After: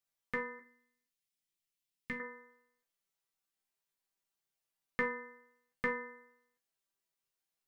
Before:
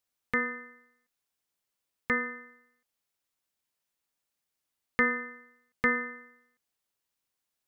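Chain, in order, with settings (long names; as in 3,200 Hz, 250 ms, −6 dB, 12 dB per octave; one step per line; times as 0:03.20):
0:00.59–0:02.20: flat-topped bell 800 Hz −10 dB 2.3 octaves
resonators tuned to a chord C3 major, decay 0.24 s
level +8 dB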